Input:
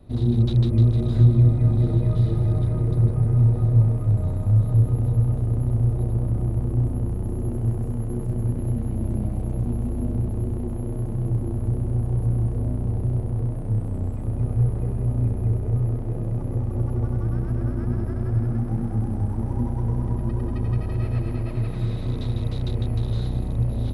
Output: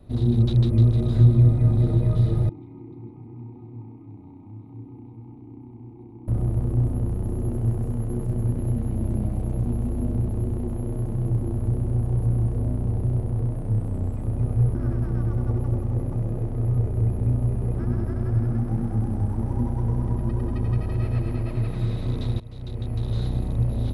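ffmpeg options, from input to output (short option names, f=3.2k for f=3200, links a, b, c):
-filter_complex "[0:a]asettb=1/sr,asplit=3[a][b][c];[a]atrim=end=2.494[d];[b]atrim=start=2.49:end=6.28,asetpts=PTS-STARTPTS,afade=t=in:d=0.004:c=qsin,afade=t=out:st=3.786:d=0.004:c=qsin,asplit=3[e][f][g];[e]bandpass=f=300:t=q:w=8,volume=0dB[h];[f]bandpass=f=870:t=q:w=8,volume=-6dB[i];[g]bandpass=f=2.24k:t=q:w=8,volume=-9dB[j];[h][i][j]amix=inputs=3:normalize=0[k];[c]atrim=start=6.276[l];[d][k]acrossfade=d=0.004:c1=hsin:c2=qsin[m];[m][l]acrossfade=d=0.004:c1=qsin:c2=hsin,asplit=4[n][o][p][q];[n]atrim=end=14.752[r];[o]atrim=start=14.748:end=17.792,asetpts=PTS-STARTPTS,areverse[s];[p]atrim=start=17.788:end=22.4,asetpts=PTS-STARTPTS,afade=t=out:st=4.608:d=0.004:c=hsin:silence=0.112202[t];[q]atrim=start=22.4,asetpts=PTS-STARTPTS,afade=t=in:d=0.83:silence=0.112202[u];[r][s]acrossfade=d=0.004:c1=hsin:c2=hsin[v];[t][u]concat=n=2:v=0:a=1[w];[v][w]acrossfade=d=0.004:c1=hsin:c2=hsin"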